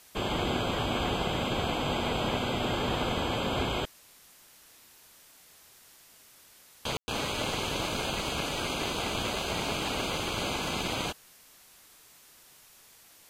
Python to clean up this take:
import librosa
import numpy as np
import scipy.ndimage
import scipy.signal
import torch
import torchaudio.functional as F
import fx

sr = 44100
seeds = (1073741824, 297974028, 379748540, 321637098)

y = fx.fix_ambience(x, sr, seeds[0], print_start_s=5.96, print_end_s=6.46, start_s=6.97, end_s=7.08)
y = fx.noise_reduce(y, sr, print_start_s=6.05, print_end_s=6.55, reduce_db=22.0)